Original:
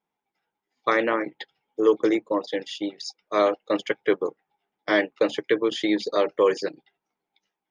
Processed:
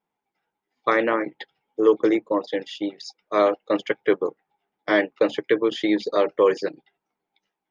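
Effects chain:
high-shelf EQ 5,100 Hz −10.5 dB
level +2 dB

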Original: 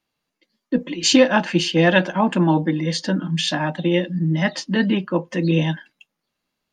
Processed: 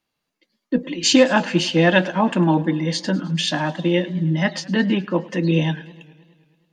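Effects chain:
feedback echo with a swinging delay time 105 ms, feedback 68%, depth 121 cents, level −21 dB

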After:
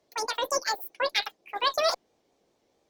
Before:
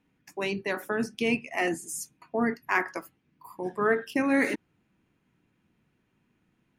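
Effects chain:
tape wow and flutter 98 cents
wrong playback speed 33 rpm record played at 78 rpm
harmonic generator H 6 −38 dB, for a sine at −10 dBFS

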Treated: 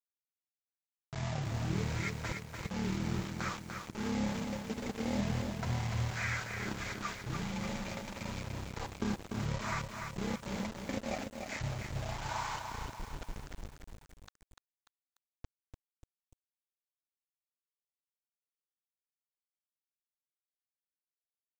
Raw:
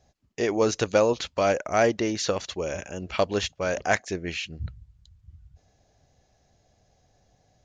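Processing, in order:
high-pass filter 47 Hz 24 dB per octave
parametric band 530 Hz −3 dB 0.62 octaves
comb filter 3.3 ms, depth 42%
hum removal 94.53 Hz, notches 11
volume swells 113 ms
downward compressor 2 to 1, threshold −42 dBFS, peak gain reduction 13 dB
bit reduction 7 bits
change of speed 0.354×
feedback echo at a low word length 294 ms, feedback 55%, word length 9 bits, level −5 dB

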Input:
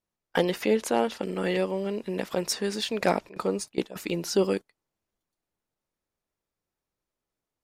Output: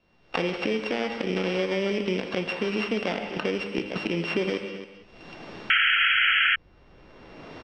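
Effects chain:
samples sorted by size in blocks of 16 samples
camcorder AGC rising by 42 dB per second
low-pass filter 4,300 Hz 24 dB per octave
hum removal 102.3 Hz, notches 39
brickwall limiter −17 dBFS, peak gain reduction 11 dB
single-tap delay 267 ms −17 dB
reverb whose tail is shaped and stops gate 220 ms flat, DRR 8 dB
sound drawn into the spectrogram noise, 0:05.70–0:06.56, 1,300–3,300 Hz −16 dBFS
multiband upward and downward compressor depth 70%

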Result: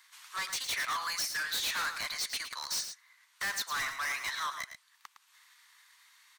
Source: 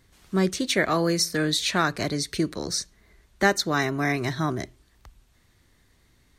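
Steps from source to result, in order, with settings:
Chebyshev high-pass filter 990 Hz, order 4
transient designer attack +2 dB, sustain −6 dB
soft clipping −37.5 dBFS, distortion −2 dB
on a send: single-tap delay 110 ms −9 dB
on the sum: level +6 dB

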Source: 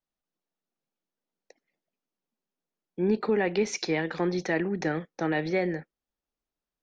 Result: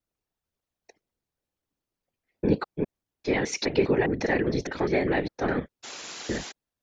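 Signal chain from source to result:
slices reordered back to front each 203 ms, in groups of 4
sound drawn into the spectrogram noise, 0:05.83–0:06.52, 220–7,400 Hz −42 dBFS
random phases in short frames
level +2 dB

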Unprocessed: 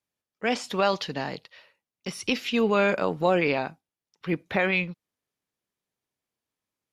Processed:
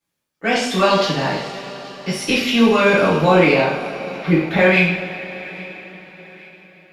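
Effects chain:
in parallel at −9.5 dB: asymmetric clip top −22.5 dBFS
on the sum: delay with a high-pass on its return 828 ms, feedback 43%, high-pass 1,500 Hz, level −20 dB
coupled-rooms reverb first 0.58 s, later 5 s, from −18 dB, DRR −9.5 dB
level −1.5 dB

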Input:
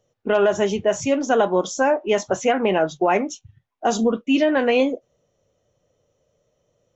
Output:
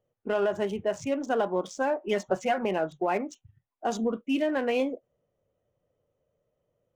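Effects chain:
adaptive Wiener filter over 9 samples
0:02.07–0:02.65: comb filter 5.4 ms, depth 77%
level −8.5 dB

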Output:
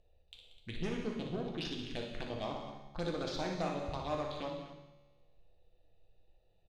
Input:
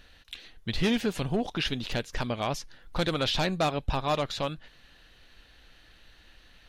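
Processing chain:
adaptive Wiener filter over 41 samples
low-pass filter 7,000 Hz 12 dB per octave
low-shelf EQ 190 Hz −9 dB
downward compressor, threshold −27 dBFS, peak gain reduction 4.5 dB
phaser swept by the level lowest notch 250 Hz, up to 4,100 Hz, full sweep at −27 dBFS
soft clipping −24.5 dBFS, distortion −20 dB
tuned comb filter 71 Hz, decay 1.5 s, harmonics all, mix 70%
multi-tap delay 60/184/253 ms −8/−12.5/−14 dB
reverb whose tail is shaped and stops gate 260 ms falling, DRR 2 dB
level +4.5 dB

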